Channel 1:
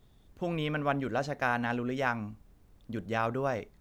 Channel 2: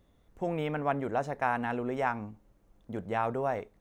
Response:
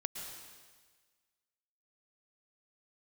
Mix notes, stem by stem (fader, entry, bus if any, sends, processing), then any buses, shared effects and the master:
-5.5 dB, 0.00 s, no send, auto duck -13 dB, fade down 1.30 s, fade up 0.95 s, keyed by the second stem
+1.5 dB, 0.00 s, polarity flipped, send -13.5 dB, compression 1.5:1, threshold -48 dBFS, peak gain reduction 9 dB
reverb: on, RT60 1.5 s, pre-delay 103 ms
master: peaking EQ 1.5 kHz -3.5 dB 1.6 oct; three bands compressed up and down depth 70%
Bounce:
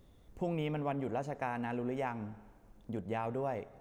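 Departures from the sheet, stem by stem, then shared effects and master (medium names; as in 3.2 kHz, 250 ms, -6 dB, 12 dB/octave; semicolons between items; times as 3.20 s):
stem 2: polarity flipped; master: missing three bands compressed up and down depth 70%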